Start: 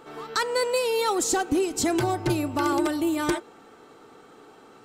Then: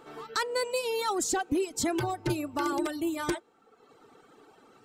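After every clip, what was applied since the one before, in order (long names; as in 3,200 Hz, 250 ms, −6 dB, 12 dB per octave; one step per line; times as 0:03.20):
reverb reduction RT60 1 s
level −4 dB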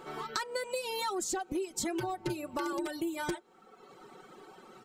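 comb filter 5.4 ms, depth 63%
downward compressor, threshold −35 dBFS, peak gain reduction 13 dB
level +3 dB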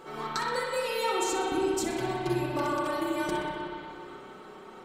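feedback echo with a high-pass in the loop 62 ms, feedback 63%, high-pass 970 Hz, level −10 dB
spring reverb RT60 2.9 s, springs 31/54 ms, chirp 45 ms, DRR −5 dB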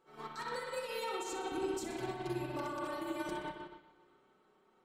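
brickwall limiter −24 dBFS, peak gain reduction 8 dB
expander for the loud parts 2.5 to 1, over −43 dBFS
level −2.5 dB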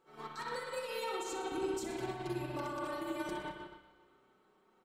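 repeating echo 109 ms, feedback 52%, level −16 dB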